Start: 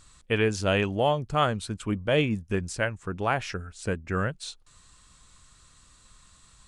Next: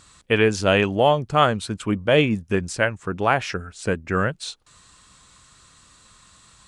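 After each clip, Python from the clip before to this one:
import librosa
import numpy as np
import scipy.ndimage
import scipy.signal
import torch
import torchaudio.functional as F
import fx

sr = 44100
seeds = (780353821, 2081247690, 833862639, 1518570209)

y = fx.highpass(x, sr, hz=130.0, slope=6)
y = fx.high_shelf(y, sr, hz=6900.0, db=-4.5)
y = y * librosa.db_to_amplitude(7.0)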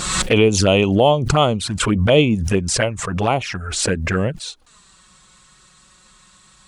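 y = fx.env_flanger(x, sr, rest_ms=5.8, full_db=-16.5)
y = fx.pre_swell(y, sr, db_per_s=42.0)
y = y * librosa.db_to_amplitude(4.5)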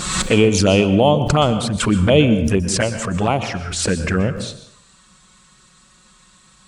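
y = fx.peak_eq(x, sr, hz=200.0, db=4.0, octaves=1.2)
y = fx.rev_plate(y, sr, seeds[0], rt60_s=0.7, hf_ratio=0.65, predelay_ms=110, drr_db=10.5)
y = y * librosa.db_to_amplitude(-1.0)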